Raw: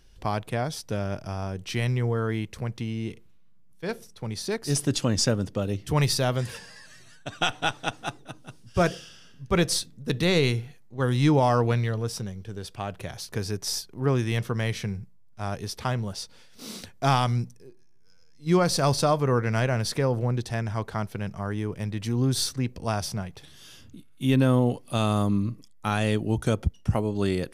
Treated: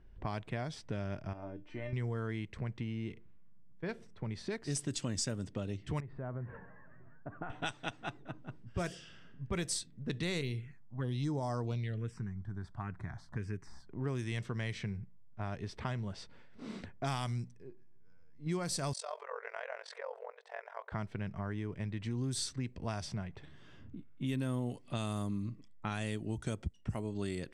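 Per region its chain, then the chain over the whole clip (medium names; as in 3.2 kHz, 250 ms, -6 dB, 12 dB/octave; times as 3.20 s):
1.33–1.93 s: peaking EQ 580 Hz +9.5 dB 2.6 oct + feedback comb 300 Hz, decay 0.26 s, mix 90%
6.00–7.50 s: low-pass 1.5 kHz 24 dB/octave + compression 2:1, threshold -40 dBFS
10.41–13.87 s: de-esser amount 75% + touch-sensitive phaser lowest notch 340 Hz, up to 2.7 kHz, full sweep at -17 dBFS
18.93–20.92 s: compression 2.5:1, threshold -26 dBFS + brick-wall FIR band-pass 450–11000 Hz + AM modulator 44 Hz, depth 80%
whole clip: level-controlled noise filter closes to 1.2 kHz, open at -18.5 dBFS; graphic EQ with 31 bands 500 Hz -5 dB, 800 Hz -4 dB, 1.25 kHz -3 dB, 2 kHz +3 dB, 8 kHz +11 dB; compression 3:1, threshold -36 dBFS; trim -1 dB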